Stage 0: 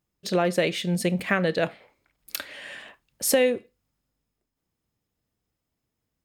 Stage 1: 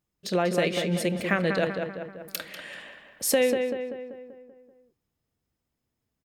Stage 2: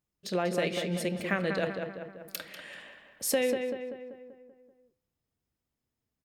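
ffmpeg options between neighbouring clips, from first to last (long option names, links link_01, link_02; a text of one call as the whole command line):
ffmpeg -i in.wav -filter_complex "[0:a]asplit=2[link_01][link_02];[link_02]adelay=193,lowpass=frequency=2500:poles=1,volume=-5dB,asplit=2[link_03][link_04];[link_04]adelay=193,lowpass=frequency=2500:poles=1,volume=0.55,asplit=2[link_05][link_06];[link_06]adelay=193,lowpass=frequency=2500:poles=1,volume=0.55,asplit=2[link_07][link_08];[link_08]adelay=193,lowpass=frequency=2500:poles=1,volume=0.55,asplit=2[link_09][link_10];[link_10]adelay=193,lowpass=frequency=2500:poles=1,volume=0.55,asplit=2[link_11][link_12];[link_12]adelay=193,lowpass=frequency=2500:poles=1,volume=0.55,asplit=2[link_13][link_14];[link_14]adelay=193,lowpass=frequency=2500:poles=1,volume=0.55[link_15];[link_01][link_03][link_05][link_07][link_09][link_11][link_13][link_15]amix=inputs=8:normalize=0,volume=-2dB" out.wav
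ffmpeg -i in.wav -af "bandreject=frequency=169.5:width_type=h:width=4,bandreject=frequency=339:width_type=h:width=4,bandreject=frequency=508.5:width_type=h:width=4,bandreject=frequency=678:width_type=h:width=4,bandreject=frequency=847.5:width_type=h:width=4,bandreject=frequency=1017:width_type=h:width=4,bandreject=frequency=1186.5:width_type=h:width=4,bandreject=frequency=1356:width_type=h:width=4,bandreject=frequency=1525.5:width_type=h:width=4,bandreject=frequency=1695:width_type=h:width=4,bandreject=frequency=1864.5:width_type=h:width=4,bandreject=frequency=2034:width_type=h:width=4,bandreject=frequency=2203.5:width_type=h:width=4,bandreject=frequency=2373:width_type=h:width=4,bandreject=frequency=2542.5:width_type=h:width=4,bandreject=frequency=2712:width_type=h:width=4,bandreject=frequency=2881.5:width_type=h:width=4,bandreject=frequency=3051:width_type=h:width=4,bandreject=frequency=3220.5:width_type=h:width=4,bandreject=frequency=3390:width_type=h:width=4,bandreject=frequency=3559.5:width_type=h:width=4,bandreject=frequency=3729:width_type=h:width=4,bandreject=frequency=3898.5:width_type=h:width=4,bandreject=frequency=4068:width_type=h:width=4,bandreject=frequency=4237.5:width_type=h:width=4,bandreject=frequency=4407:width_type=h:width=4,bandreject=frequency=4576.5:width_type=h:width=4,bandreject=frequency=4746:width_type=h:width=4,bandreject=frequency=4915.5:width_type=h:width=4,bandreject=frequency=5085:width_type=h:width=4,bandreject=frequency=5254.5:width_type=h:width=4,bandreject=frequency=5424:width_type=h:width=4,bandreject=frequency=5593.5:width_type=h:width=4,volume=-4.5dB" out.wav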